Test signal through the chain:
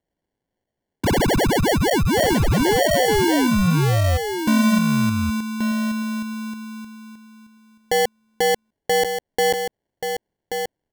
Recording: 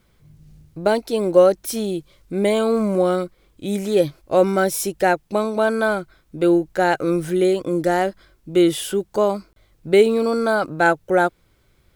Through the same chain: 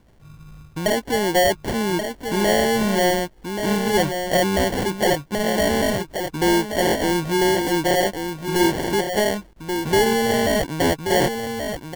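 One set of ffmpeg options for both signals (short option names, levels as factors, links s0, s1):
-filter_complex "[0:a]asplit=2[s0][s1];[s1]acompressor=threshold=0.0447:ratio=6,volume=0.794[s2];[s0][s2]amix=inputs=2:normalize=0,acrusher=samples=35:mix=1:aa=0.000001,asoftclip=type=tanh:threshold=0.211,aecho=1:1:1131:0.447"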